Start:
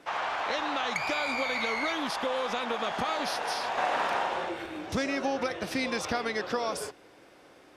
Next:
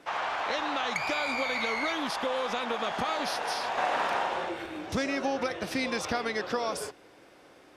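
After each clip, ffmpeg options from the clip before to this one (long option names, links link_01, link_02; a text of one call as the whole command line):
ffmpeg -i in.wav -af anull out.wav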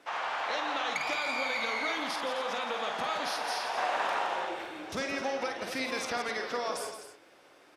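ffmpeg -i in.wav -filter_complex "[0:a]lowshelf=frequency=240:gain=-11.5,asplit=2[link_01][link_02];[link_02]aecho=0:1:49.56|169.1|259.5:0.447|0.355|0.251[link_03];[link_01][link_03]amix=inputs=2:normalize=0,volume=-2.5dB" out.wav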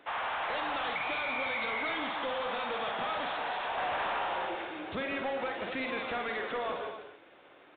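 ffmpeg -i in.wav -af "asoftclip=type=tanh:threshold=-30dB,volume=2dB" -ar 8000 -c:a adpcm_g726 -b:a 40k out.wav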